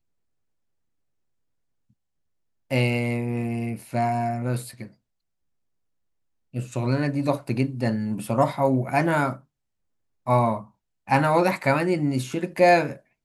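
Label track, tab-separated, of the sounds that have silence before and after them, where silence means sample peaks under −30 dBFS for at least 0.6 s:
2.710000	4.840000	sound
6.550000	9.330000	sound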